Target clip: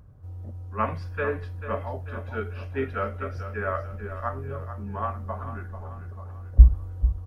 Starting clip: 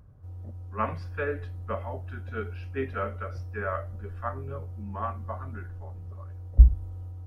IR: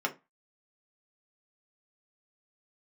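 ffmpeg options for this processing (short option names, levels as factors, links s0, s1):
-af "aecho=1:1:441|882|1323|1764|2205:0.282|0.13|0.0596|0.0274|0.0126,volume=1.33"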